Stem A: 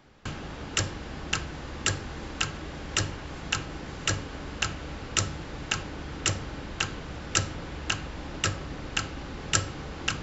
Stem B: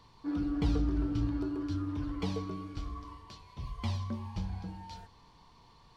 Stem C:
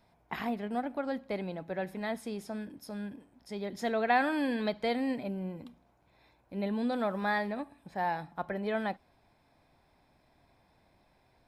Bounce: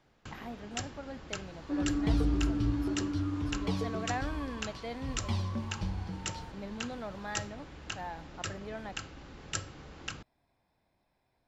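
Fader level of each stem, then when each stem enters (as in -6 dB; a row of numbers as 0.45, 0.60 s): -11.0, +1.5, -9.5 dB; 0.00, 1.45, 0.00 s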